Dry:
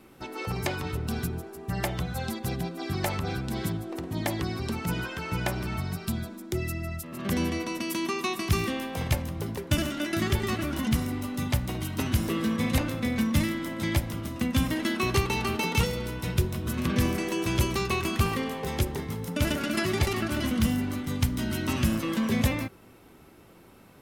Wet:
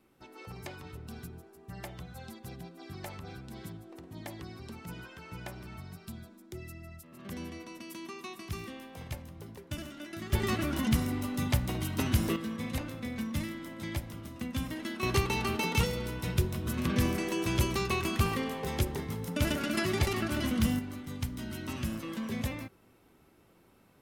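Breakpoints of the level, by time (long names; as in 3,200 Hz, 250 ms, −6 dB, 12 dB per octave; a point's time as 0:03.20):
−13.5 dB
from 0:10.33 −1.5 dB
from 0:12.36 −9.5 dB
from 0:15.03 −3 dB
from 0:20.79 −9.5 dB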